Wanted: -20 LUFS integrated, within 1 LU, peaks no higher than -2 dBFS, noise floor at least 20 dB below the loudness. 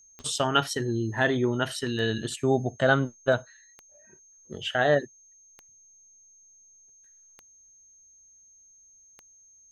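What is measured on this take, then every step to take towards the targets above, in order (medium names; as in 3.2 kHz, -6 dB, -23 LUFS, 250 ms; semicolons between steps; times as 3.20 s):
clicks found 6; steady tone 6.4 kHz; tone level -54 dBFS; loudness -26.5 LUFS; peak level -7.5 dBFS; loudness target -20.0 LUFS
-> de-click; band-stop 6.4 kHz, Q 30; trim +6.5 dB; peak limiter -2 dBFS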